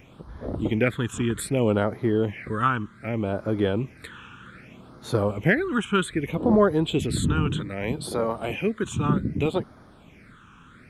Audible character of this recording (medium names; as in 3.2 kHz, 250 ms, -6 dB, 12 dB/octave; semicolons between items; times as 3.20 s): phasing stages 8, 0.64 Hz, lowest notch 600–2600 Hz